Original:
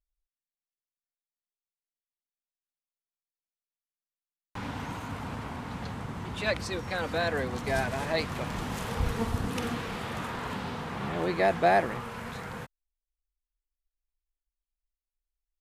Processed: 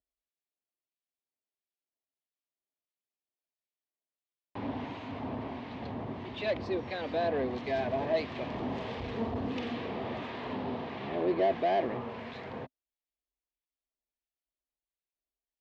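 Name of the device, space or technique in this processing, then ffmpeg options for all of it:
guitar amplifier with harmonic tremolo: -filter_complex "[0:a]acrossover=split=1500[link_01][link_02];[link_01]aeval=exprs='val(0)*(1-0.5/2+0.5/2*cos(2*PI*1.5*n/s))':channel_layout=same[link_03];[link_02]aeval=exprs='val(0)*(1-0.5/2-0.5/2*cos(2*PI*1.5*n/s))':channel_layout=same[link_04];[link_03][link_04]amix=inputs=2:normalize=0,asoftclip=type=tanh:threshold=-28.5dB,highpass=89,equalizer=frequency=170:width_type=q:width=4:gain=-7,equalizer=frequency=260:width_type=q:width=4:gain=7,equalizer=frequency=380:width_type=q:width=4:gain=7,equalizer=frequency=640:width_type=q:width=4:gain=8,equalizer=frequency=1400:width_type=q:width=4:gain=-10,lowpass=frequency=4100:width=0.5412,lowpass=frequency=4100:width=1.3066"

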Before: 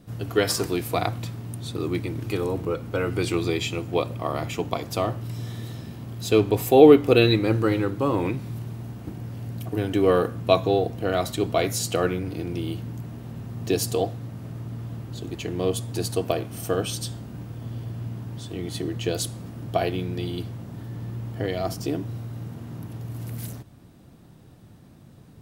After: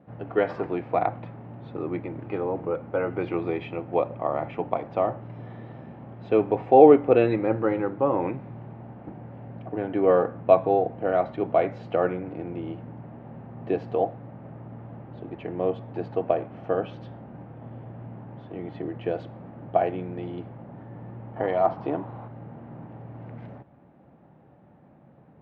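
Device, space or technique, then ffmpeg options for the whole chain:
bass cabinet: -filter_complex "[0:a]asettb=1/sr,asplit=3[link_01][link_02][link_03];[link_01]atrim=end=21.364[link_04];[link_02]atrim=start=21.36:end=22.28,asetpts=PTS-STARTPTS,afade=type=in:duration=0.004:curve=qsin,afade=type=out:start_time=0.916:duration=0.004:curve=qsin,equalizer=frequency=1000:width_type=o:width=1:gain=11,equalizer=frequency=4000:width_type=o:width=1:gain=8,equalizer=frequency=8000:width_type=o:width=1:gain=-9[link_05];[link_03]atrim=start=22.276[link_06];[link_04][link_05]acrossfade=duration=0.004:curve1=hsin:curve2=qsin[link_07];[link_07][link_06]acrossfade=duration=0.004:curve1=qsin:curve2=hsin,highpass=88,equalizer=frequency=100:width_type=q:width=4:gain=-10,equalizer=frequency=570:width_type=q:width=4:gain=8,equalizer=frequency=820:width_type=q:width=4:gain=9,lowpass=frequency=2200:width=0.5412,lowpass=frequency=2200:width=1.3066,volume=-3.5dB"

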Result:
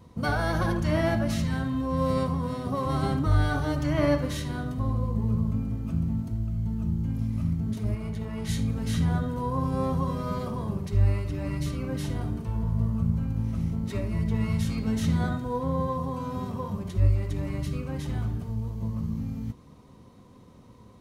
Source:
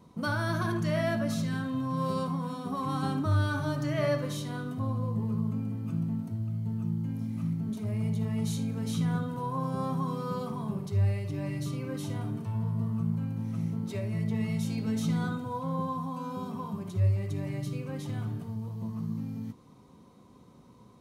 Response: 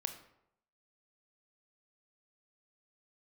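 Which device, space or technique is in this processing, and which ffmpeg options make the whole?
octave pedal: -filter_complex "[0:a]asplit=2[link_01][link_02];[link_02]asetrate=22050,aresample=44100,atempo=2,volume=-2dB[link_03];[link_01][link_03]amix=inputs=2:normalize=0,asettb=1/sr,asplit=3[link_04][link_05][link_06];[link_04]atrim=end=7.954[link_07];[link_05]atrim=start=7.95:end=8.49,asetpts=PTS-STARTPTS,afade=type=in:duration=0.004:curve=qsin,afade=type=out:start_time=0.536:duration=0.004:curve=qsin,bass=frequency=250:gain=-8,treble=frequency=4000:gain=-5[link_08];[link_06]atrim=start=8.486[link_09];[link_07][link_08]acrossfade=duration=0.004:curve1=hsin:curve2=qsin[link_10];[link_10][link_09]acrossfade=duration=0.004:curve1=qsin:curve2=hsin,volume=2dB"

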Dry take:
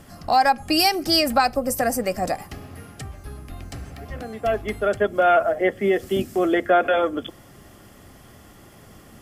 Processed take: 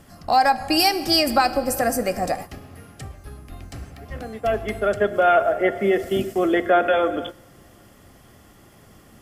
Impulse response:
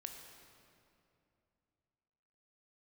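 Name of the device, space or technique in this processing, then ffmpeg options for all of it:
keyed gated reverb: -filter_complex "[0:a]asplit=3[link_01][link_02][link_03];[1:a]atrim=start_sample=2205[link_04];[link_02][link_04]afir=irnorm=-1:irlink=0[link_05];[link_03]apad=whole_len=406545[link_06];[link_05][link_06]sidechaingate=range=-16dB:threshold=-33dB:ratio=16:detection=peak,volume=0dB[link_07];[link_01][link_07]amix=inputs=2:normalize=0,volume=-3.5dB"

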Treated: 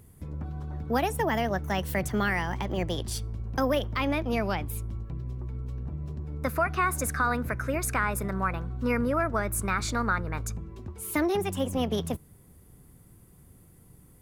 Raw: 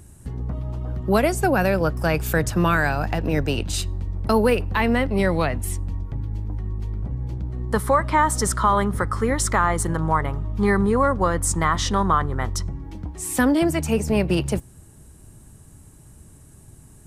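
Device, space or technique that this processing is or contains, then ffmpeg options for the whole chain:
nightcore: -af "asetrate=52920,aresample=44100,volume=-7.5dB"

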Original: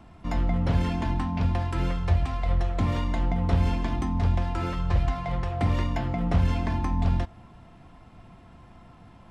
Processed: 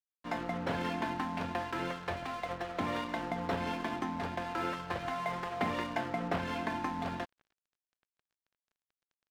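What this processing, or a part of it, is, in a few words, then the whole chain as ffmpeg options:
pocket radio on a weak battery: -filter_complex "[0:a]asettb=1/sr,asplit=3[link_01][link_02][link_03];[link_01]atrim=end=5.194[link_04];[link_02]atrim=start=5.19:end=5.71,asetpts=PTS-STARTPTS,afade=type=in:duration=0.004:curve=qsin,afade=type=out:start_time=0.516:duration=0.004:curve=qsin,aecho=1:1:4.8:0.44,atrim=end_sample=22932[link_05];[link_03]atrim=start=5.706[link_06];[link_04][link_05]acrossfade=duration=0.004:curve1=hsin:curve2=qsin[link_07];[link_07][link_06]acrossfade=duration=0.004:curve1=qsin:curve2=hsin,highpass=300,lowpass=4300,aeval=exprs='sgn(val(0))*max(abs(val(0))-0.00473,0)':channel_layout=same,equalizer=frequency=1600:width_type=o:width=0.27:gain=4.5"

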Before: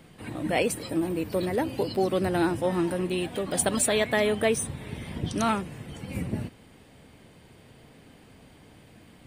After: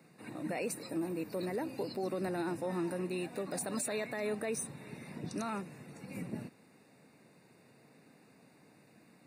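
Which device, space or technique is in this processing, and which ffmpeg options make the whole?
PA system with an anti-feedback notch: -af "highpass=frequency=140:width=0.5412,highpass=frequency=140:width=1.3066,asuperstop=centerf=3200:order=12:qfactor=4.4,alimiter=limit=-19.5dB:level=0:latency=1:release=17,volume=-8dB"

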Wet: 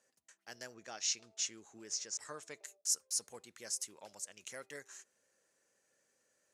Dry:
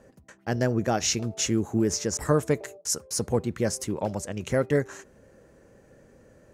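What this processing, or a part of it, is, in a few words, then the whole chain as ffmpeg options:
piezo pickup straight into a mixer: -filter_complex "[0:a]asettb=1/sr,asplit=3[link_01][link_02][link_03];[link_01]atrim=end=0.744[link_04];[link_02]atrim=start=0.74:end=2.64,asetpts=PTS-STARTPTS,afade=type=in:duration=0.004:curve=qsin,afade=type=out:start_time=1.896:duration=0.004:curve=qsin,lowpass=6100[link_05];[link_03]atrim=start=2.636[link_06];[link_04][link_05]acrossfade=duration=0.004:curve1=hsin:curve2=qsin[link_07];[link_07][link_06]acrossfade=duration=0.004:curve1=qsin:curve2=hsin,lowpass=8800,aderivative,volume=-3dB"

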